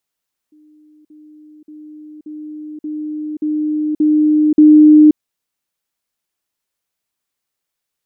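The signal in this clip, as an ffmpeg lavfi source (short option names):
-f lavfi -i "aevalsrc='pow(10,(-45+6*floor(t/0.58))/20)*sin(2*PI*304*t)*clip(min(mod(t,0.58),0.53-mod(t,0.58))/0.005,0,1)':d=4.64:s=44100"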